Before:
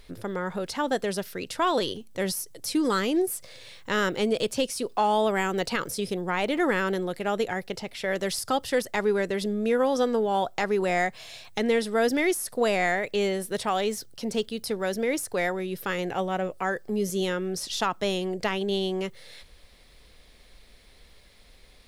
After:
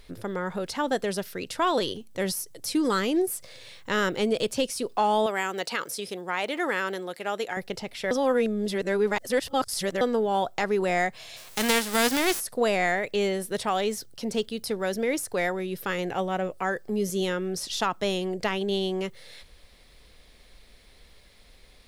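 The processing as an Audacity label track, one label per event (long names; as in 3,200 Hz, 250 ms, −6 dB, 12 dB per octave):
5.260000	7.570000	high-pass filter 580 Hz 6 dB per octave
8.110000	10.010000	reverse
11.360000	12.390000	spectral envelope flattened exponent 0.3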